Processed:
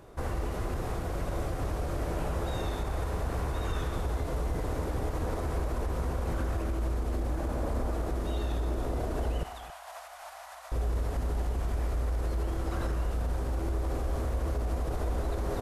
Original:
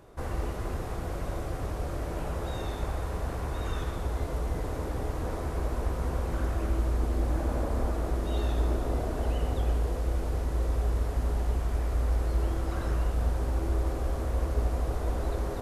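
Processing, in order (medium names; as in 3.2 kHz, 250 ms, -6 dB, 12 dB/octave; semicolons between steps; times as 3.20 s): peak limiter -25 dBFS, peak gain reduction 9 dB; 9.43–10.72 s: elliptic high-pass 670 Hz, stop band 40 dB; delay 270 ms -17.5 dB; trim +2 dB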